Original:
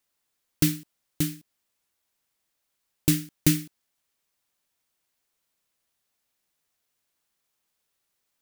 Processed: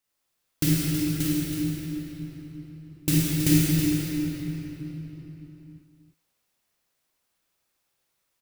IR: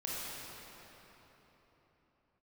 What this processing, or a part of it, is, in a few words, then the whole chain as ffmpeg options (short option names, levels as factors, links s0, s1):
cave: -filter_complex "[0:a]aecho=1:1:322:0.355[s0];[1:a]atrim=start_sample=2205[s1];[s0][s1]afir=irnorm=-1:irlink=0"